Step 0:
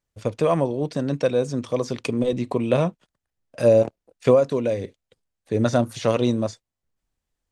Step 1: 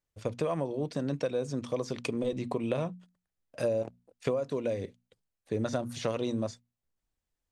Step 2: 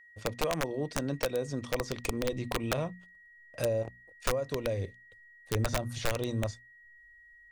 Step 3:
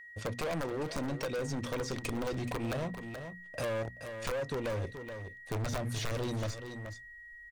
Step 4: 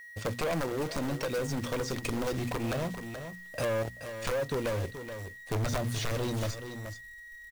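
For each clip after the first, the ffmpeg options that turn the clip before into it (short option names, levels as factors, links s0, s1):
-af "bandreject=f=60:t=h:w=6,bandreject=f=120:t=h:w=6,bandreject=f=180:t=h:w=6,bandreject=f=240:t=h:w=6,acompressor=threshold=0.0891:ratio=6,volume=0.531"
-af "aeval=exprs='val(0)+0.002*sin(2*PI*1900*n/s)':c=same,aeval=exprs='(mod(11.2*val(0)+1,2)-1)/11.2':c=same,asubboost=boost=7:cutoff=82"
-af "volume=56.2,asoftclip=hard,volume=0.0178,aecho=1:1:427:0.266,acompressor=threshold=0.00631:ratio=1.5,volume=2"
-af "acrusher=bits=3:mode=log:mix=0:aa=0.000001,volume=1.33"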